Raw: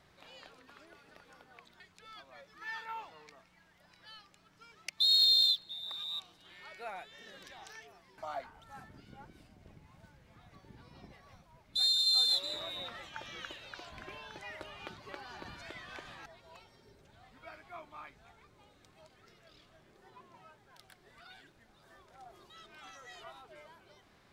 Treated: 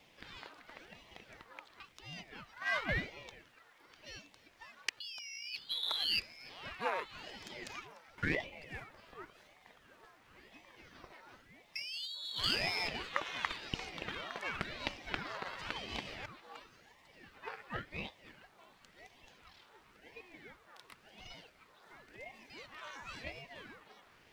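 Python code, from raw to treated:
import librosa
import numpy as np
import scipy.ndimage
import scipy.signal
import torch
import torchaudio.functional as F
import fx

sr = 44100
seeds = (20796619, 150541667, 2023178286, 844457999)

p1 = fx.law_mismatch(x, sr, coded='A')
p2 = scipy.signal.sosfilt(scipy.signal.butter(2, 550.0, 'highpass', fs=sr, output='sos'), p1)
p3 = fx.high_shelf(p2, sr, hz=4700.0, db=-10.0)
p4 = fx.over_compress(p3, sr, threshold_db=-45.0, ratio=-1.0)
p5 = p4 + fx.echo_single(p4, sr, ms=296, db=-21.0, dry=0)
p6 = fx.ring_lfo(p5, sr, carrier_hz=820.0, swing_pct=80, hz=0.94)
y = p6 * 10.0 ** (10.0 / 20.0)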